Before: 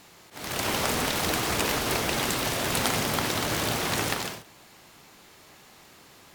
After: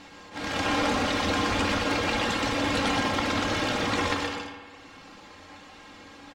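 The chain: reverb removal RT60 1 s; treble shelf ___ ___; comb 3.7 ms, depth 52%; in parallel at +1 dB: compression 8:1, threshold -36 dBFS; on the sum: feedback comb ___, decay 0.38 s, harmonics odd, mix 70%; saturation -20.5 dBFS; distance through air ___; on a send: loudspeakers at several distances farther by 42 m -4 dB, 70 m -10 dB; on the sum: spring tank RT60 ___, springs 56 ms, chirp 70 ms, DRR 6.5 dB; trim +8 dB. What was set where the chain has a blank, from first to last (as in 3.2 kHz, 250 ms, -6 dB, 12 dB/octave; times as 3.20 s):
10 kHz, +4 dB, 95 Hz, 130 m, 1.6 s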